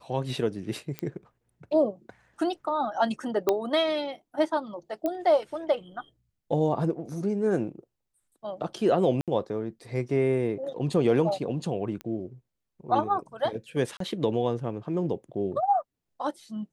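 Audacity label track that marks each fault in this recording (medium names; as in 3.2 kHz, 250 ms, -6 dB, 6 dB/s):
0.990000	0.990000	pop -18 dBFS
3.490000	3.490000	pop -10 dBFS
5.060000	5.060000	pop -17 dBFS
9.210000	9.280000	dropout 67 ms
12.010000	12.010000	pop -23 dBFS
13.970000	14.000000	dropout 33 ms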